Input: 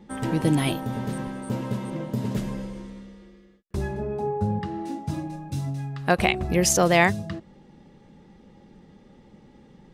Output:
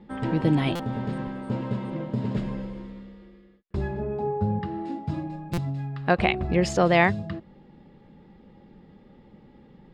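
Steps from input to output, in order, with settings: air absorption 150 m; notch 6000 Hz, Q 5.6; stuck buffer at 0.75/5.53, samples 256, times 7

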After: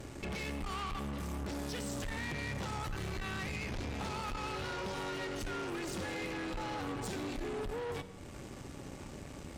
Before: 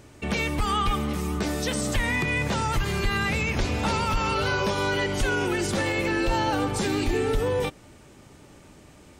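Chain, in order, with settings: low shelf 480 Hz +3.5 dB; de-hum 97.51 Hz, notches 2; in parallel at +0.5 dB: limiter -22.5 dBFS, peak gain reduction 10.5 dB; on the sum: compressor 2:1, threshold -38 dBFS, peak gain reduction 13 dB; tube stage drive 36 dB, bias 0.8; on a send at -12 dB: reverb RT60 1.0 s, pre-delay 10 ms; on the sum: speed mistake 25 fps video run at 24 fps

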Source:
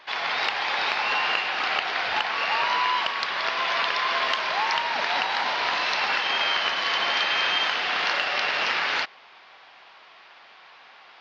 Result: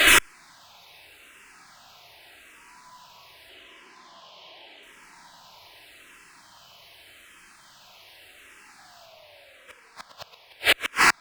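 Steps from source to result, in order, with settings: high shelf 4200 Hz +12 dB; in parallel at -1 dB: vocal rider; on the sum: fuzz box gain 44 dB, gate -51 dBFS; 3.49–4.83 speaker cabinet 170–6000 Hz, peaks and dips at 180 Hz +7 dB, 370 Hz +9 dB, 560 Hz +6 dB, 800 Hz +7 dB, 1400 Hz -6 dB, 3100 Hz +8 dB; 8.45–9.9 painted sound fall 440–900 Hz -21 dBFS; on a send: diffused feedback echo 0.456 s, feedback 75%, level -12 dB; on the sum: shoebox room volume 3200 m³, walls mixed, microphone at 2.9 m; flipped gate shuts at -2 dBFS, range -39 dB; endless phaser -0.84 Hz

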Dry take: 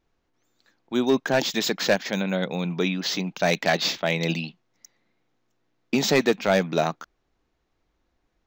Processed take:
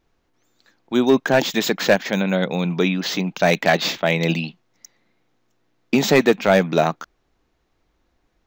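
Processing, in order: dynamic EQ 5100 Hz, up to -6 dB, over -41 dBFS, Q 1.3; gain +5.5 dB

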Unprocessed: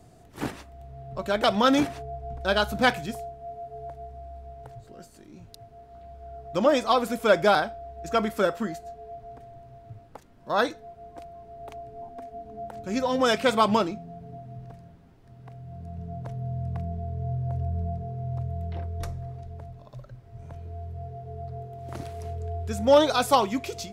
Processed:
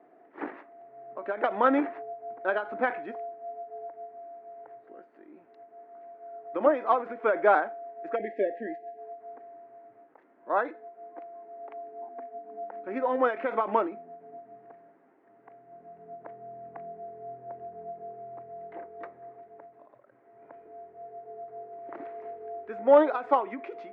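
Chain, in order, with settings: Chebyshev band-pass 300–2000 Hz, order 3; spectral delete 8.16–8.98, 730–1600 Hz; ending taper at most 160 dB/s

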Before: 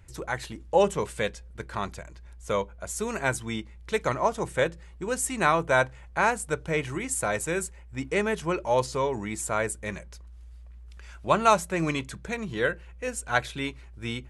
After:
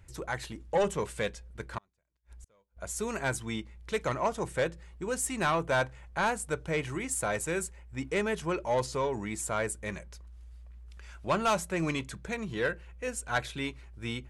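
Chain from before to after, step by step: soft clip -17.5 dBFS, distortion -13 dB; 1.78–2.77 flipped gate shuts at -37 dBFS, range -37 dB; gain -2.5 dB

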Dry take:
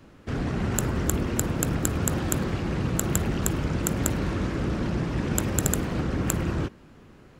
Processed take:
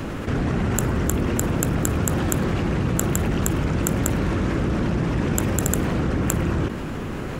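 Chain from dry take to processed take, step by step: bell 4600 Hz -4 dB 0.79 oct; fast leveller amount 70%; gain +1 dB

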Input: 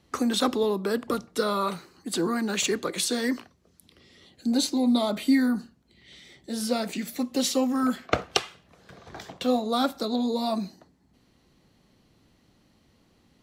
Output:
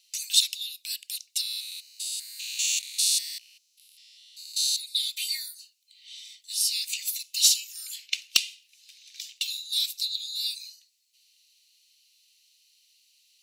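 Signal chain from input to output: 1.41–4.78 stepped spectrum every 0.2 s; steep high-pass 2600 Hz 48 dB/oct; high shelf 4100 Hz +4.5 dB; notch 3300 Hz, Q 11; overloaded stage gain 15 dB; gain +7 dB

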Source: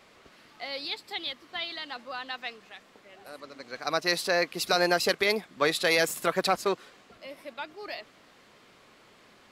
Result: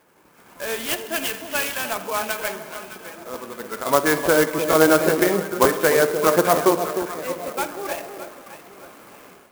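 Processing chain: gliding pitch shift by -4 st ending unshifted; treble ducked by the level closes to 1800 Hz, closed at -24.5 dBFS; polynomial smoothing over 25 samples; low shelf 82 Hz -11.5 dB; notch 1900 Hz, Q 12; echo with dull and thin repeats by turns 0.306 s, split 910 Hz, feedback 60%, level -8 dB; spring tank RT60 1.3 s, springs 31/51/56 ms, chirp 30 ms, DRR 10 dB; AGC gain up to 13 dB; crackling interface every 0.46 s repeat, from 0.57; clock jitter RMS 0.059 ms

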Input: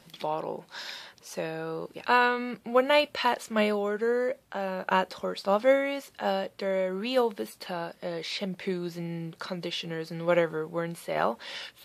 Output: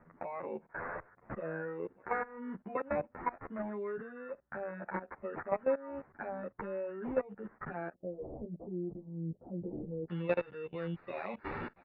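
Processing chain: spectral noise reduction 8 dB; level quantiser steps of 22 dB; sample-and-hold 14×; compressor 3:1, threshold -39 dBFS, peak gain reduction 15.5 dB; steep low-pass 1900 Hz 36 dB/oct, from 7.92 s 600 Hz, from 10.08 s 3000 Hz; endless flanger 10 ms +1.3 Hz; gain +8.5 dB

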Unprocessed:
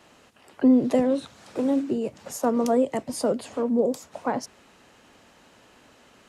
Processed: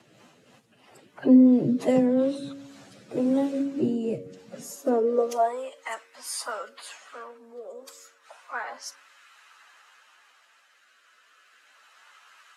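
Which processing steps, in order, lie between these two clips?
rotary speaker horn 6 Hz, later 0.65 Hz, at 0.94; de-hum 92.55 Hz, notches 6; plain phase-vocoder stretch 2×; high-pass sweep 130 Hz -> 1300 Hz, 4.41–5.7; gain +1.5 dB

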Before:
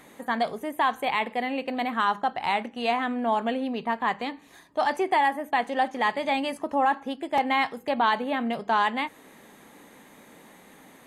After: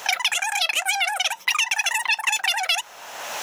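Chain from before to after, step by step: wide varispeed 3.23×; three-band squash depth 100%; gain +2.5 dB

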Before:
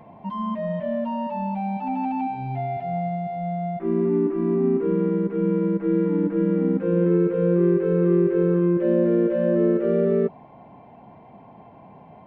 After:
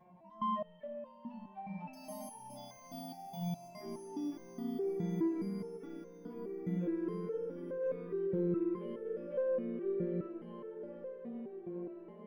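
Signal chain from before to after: 1.93–3.68 careless resampling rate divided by 8×, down filtered, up hold; on a send: diffused feedback echo 1.104 s, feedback 47%, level -5 dB; on the sum: stepped resonator 4.8 Hz 180–520 Hz; gain -2.5 dB

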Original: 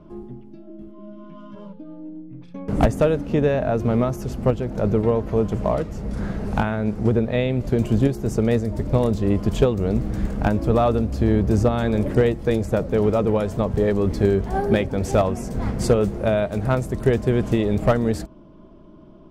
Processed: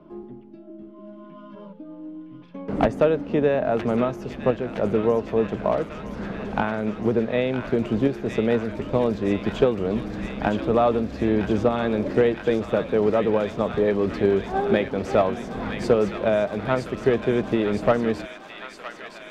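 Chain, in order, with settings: three-band isolator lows -13 dB, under 190 Hz, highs -17 dB, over 4500 Hz; on a send: thin delay 0.964 s, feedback 77%, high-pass 1600 Hz, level -4.5 dB

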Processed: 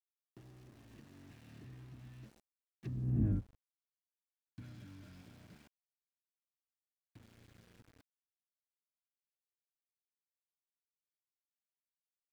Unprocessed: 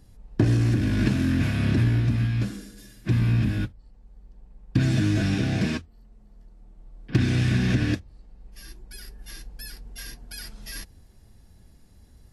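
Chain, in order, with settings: Doppler pass-by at 3.27, 26 m/s, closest 1.7 m; treble ducked by the level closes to 540 Hz, closed at -33 dBFS; sample gate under -55.5 dBFS; gain -4 dB

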